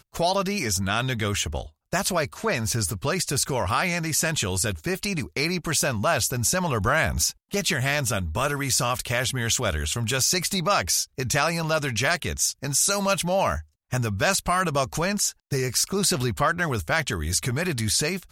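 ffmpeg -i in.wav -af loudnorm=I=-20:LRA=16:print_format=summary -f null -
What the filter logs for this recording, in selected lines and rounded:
Input Integrated:    -24.0 LUFS
Input True Peak:      -7.6 dBTP
Input LRA:             1.2 LU
Input Threshold:     -34.1 LUFS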